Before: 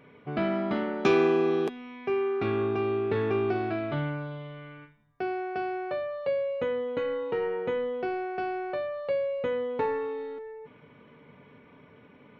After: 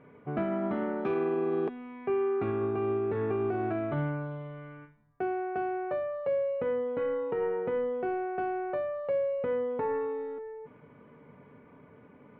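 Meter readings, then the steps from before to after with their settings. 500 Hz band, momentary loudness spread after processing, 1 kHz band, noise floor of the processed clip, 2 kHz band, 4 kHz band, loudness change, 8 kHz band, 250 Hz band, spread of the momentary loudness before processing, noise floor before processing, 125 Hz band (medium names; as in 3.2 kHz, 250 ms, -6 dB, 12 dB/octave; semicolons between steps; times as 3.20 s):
-2.0 dB, 9 LU, -2.0 dB, -56 dBFS, -5.5 dB, under -10 dB, -2.0 dB, no reading, -2.5 dB, 11 LU, -55 dBFS, -1.5 dB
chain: low-pass 1.6 kHz 12 dB/octave; peak limiter -22.5 dBFS, peak gain reduction 10 dB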